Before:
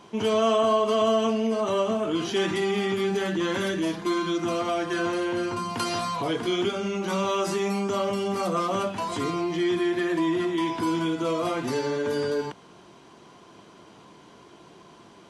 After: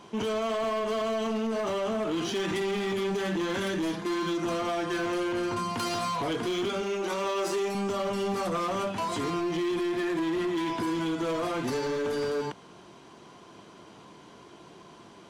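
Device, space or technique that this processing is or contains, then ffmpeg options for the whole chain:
limiter into clipper: -filter_complex "[0:a]alimiter=limit=-20dB:level=0:latency=1:release=34,asoftclip=type=hard:threshold=-26dB,asettb=1/sr,asplit=3[link_01][link_02][link_03];[link_01]atrim=end=6.824[link_04];[link_02]atrim=start=6.82:end=7.75,asetpts=PTS-STARTPTS,afade=type=in:duration=0.004:curve=qsin,afade=type=out:start_time=0.926:duration=0.004:curve=qsin,lowshelf=frequency=240:width_type=q:width=1.5:gain=-8[link_05];[link_03]atrim=start=7.746[link_06];[link_04][link_05]acrossfade=duration=0.004:curve1=hsin:curve2=qsin[link_07];[link_07][link_06]acrossfade=duration=0.004:curve1=qsin:curve2=hsin"

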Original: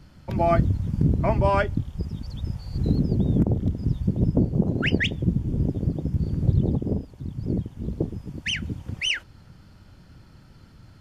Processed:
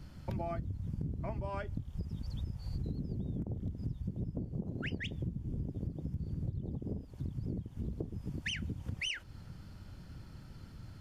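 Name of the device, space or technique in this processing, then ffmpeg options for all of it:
ASMR close-microphone chain: -af "lowshelf=frequency=210:gain=4.5,acompressor=threshold=-31dB:ratio=10,highshelf=frequency=7800:gain=4,volume=-3.5dB"

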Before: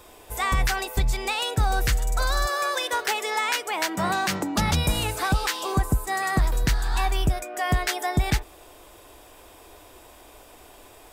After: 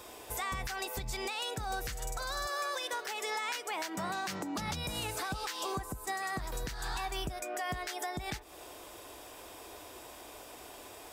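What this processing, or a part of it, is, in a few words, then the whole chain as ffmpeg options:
broadcast voice chain: -af "highpass=frequency=120:poles=1,deesser=0.4,acompressor=threshold=-33dB:ratio=4,equalizer=frequency=5500:width_type=o:width=0.74:gain=3,alimiter=level_in=2.5dB:limit=-24dB:level=0:latency=1:release=161,volume=-2.5dB"

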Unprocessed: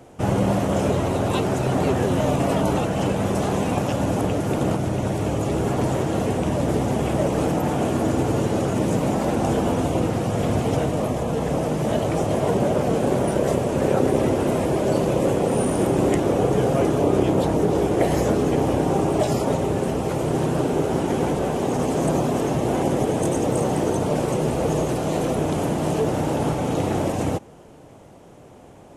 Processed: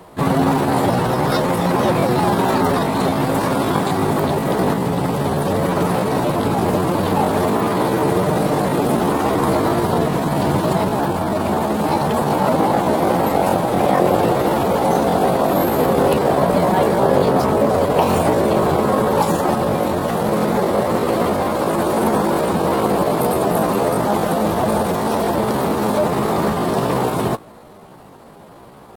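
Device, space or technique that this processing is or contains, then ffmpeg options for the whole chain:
chipmunk voice: -af "asetrate=60591,aresample=44100,atempo=0.727827,volume=4.5dB"

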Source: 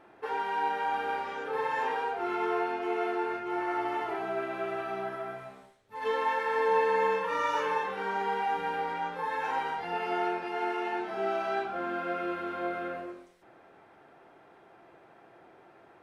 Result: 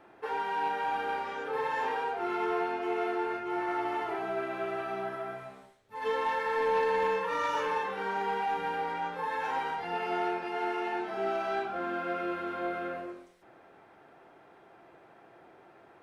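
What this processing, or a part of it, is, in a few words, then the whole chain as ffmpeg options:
one-band saturation: -filter_complex "[0:a]acrossover=split=350|4900[link_01][link_02][link_03];[link_02]asoftclip=type=tanh:threshold=-23dB[link_04];[link_01][link_04][link_03]amix=inputs=3:normalize=0"

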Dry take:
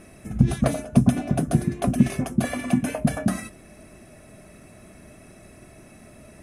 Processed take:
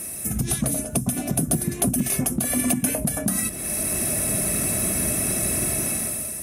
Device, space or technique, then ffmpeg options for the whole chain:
FM broadcast chain: -filter_complex "[0:a]highpass=45,dynaudnorm=framelen=110:gausssize=11:maxgain=16dB,acrossover=split=420|5000[link_01][link_02][link_03];[link_01]acompressor=threshold=-22dB:ratio=4[link_04];[link_02]acompressor=threshold=-38dB:ratio=4[link_05];[link_03]acompressor=threshold=-51dB:ratio=4[link_06];[link_04][link_05][link_06]amix=inputs=3:normalize=0,aemphasis=mode=production:type=50fm,alimiter=limit=-17.5dB:level=0:latency=1:release=141,asoftclip=type=hard:threshold=-18.5dB,lowpass=frequency=15000:width=0.5412,lowpass=frequency=15000:width=1.3066,aemphasis=mode=production:type=50fm,volume=4.5dB"

